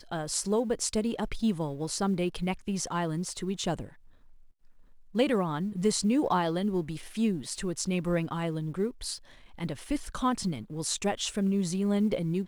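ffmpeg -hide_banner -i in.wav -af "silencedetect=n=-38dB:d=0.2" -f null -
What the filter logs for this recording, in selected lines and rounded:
silence_start: 3.87
silence_end: 5.15 | silence_duration: 1.28
silence_start: 9.17
silence_end: 9.59 | silence_duration: 0.42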